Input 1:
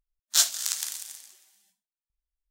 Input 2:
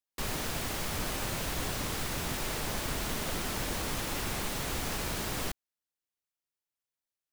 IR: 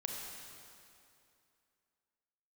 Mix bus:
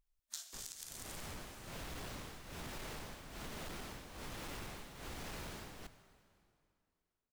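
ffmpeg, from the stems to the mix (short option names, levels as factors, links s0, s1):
-filter_complex "[0:a]acompressor=threshold=0.0398:ratio=6,volume=1,asplit=2[s0][s1];[s1]volume=0.224[s2];[1:a]highshelf=f=6700:g=-7,tremolo=f=1.2:d=0.89,asoftclip=type=hard:threshold=0.0224,adelay=350,volume=0.891,asplit=2[s3][s4];[s4]volume=0.188[s5];[2:a]atrim=start_sample=2205[s6];[s2][s5]amix=inputs=2:normalize=0[s7];[s7][s6]afir=irnorm=-1:irlink=0[s8];[s0][s3][s8]amix=inputs=3:normalize=0,acompressor=threshold=0.00708:ratio=16"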